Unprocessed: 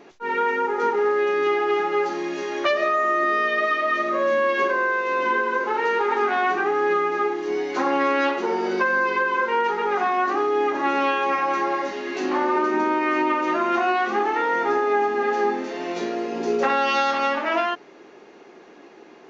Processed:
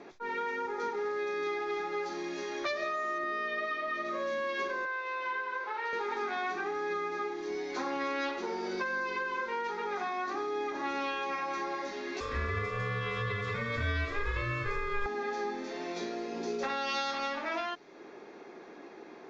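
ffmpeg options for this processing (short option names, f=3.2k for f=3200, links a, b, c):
-filter_complex "[0:a]asettb=1/sr,asplit=3[a][b][c];[a]atrim=end=3.184[d];[b]atrim=start=3.18:end=4.05,asetpts=PTS-STARTPTS,afade=t=in:d=0.004:c=qsin,afade=t=out:st=0.866:d=0.004:c=qsin,lowpass=f=3k:p=1[e];[c]atrim=start=4.046[f];[d][e]acrossfade=d=0.004:c1=hsin:c2=qsin[g];[g][f]acrossfade=d=0.004:c1=qsin:c2=hsin,asettb=1/sr,asplit=3[h][i][j];[h]atrim=end=4.854[k];[i]atrim=start=4.85:end=5.93,asetpts=PTS-STARTPTS,afade=t=in:d=0.004:c=qsin,afade=t=out:st=1.076:d=0.004:c=qsin,highpass=650,lowpass=4k[l];[j]atrim=start=5.926[m];[k][l]acrossfade=d=0.004:c1=hsin:c2=qsin[n];[n][m]acrossfade=d=0.004:c1=qsin:c2=hsin,asettb=1/sr,asplit=3[o][p][q];[o]atrim=end=12.204[r];[p]atrim=start=12.2:end=15.06,asetpts=PTS-STARTPTS,afade=t=in:d=0.004:c=qsin,afade=t=out:st=2.856:d=0.004:c=qsin,aeval=exprs='val(0)*sin(2*PI*810*n/s)':c=same[s];[q]atrim=start=15.056[t];[r][s]acrossfade=d=0.004:c1=hsin:c2=qsin[u];[u][t]acrossfade=d=0.004:c1=qsin:c2=hsin,lowpass=6k,acrossover=split=130|3000[v][w][x];[w]acompressor=threshold=-40dB:ratio=2[y];[v][y][x]amix=inputs=3:normalize=0,bandreject=f=2.9k:w=6.2,volume=-2dB"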